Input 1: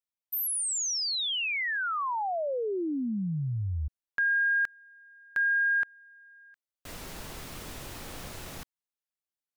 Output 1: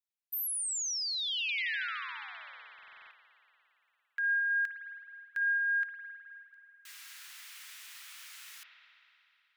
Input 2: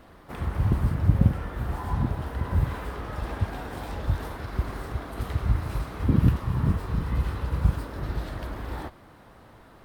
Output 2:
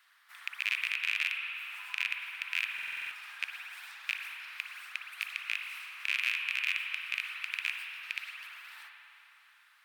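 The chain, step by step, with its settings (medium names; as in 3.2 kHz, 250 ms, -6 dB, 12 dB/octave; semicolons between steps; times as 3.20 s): rattle on loud lows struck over -21 dBFS, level -11 dBFS; inverse Chebyshev high-pass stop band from 260 Hz, stop band 80 dB; spring tank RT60 3.1 s, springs 51 ms, chirp 75 ms, DRR 2.5 dB; buffer glitch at 2.74 s, samples 2048, times 7; trim -4 dB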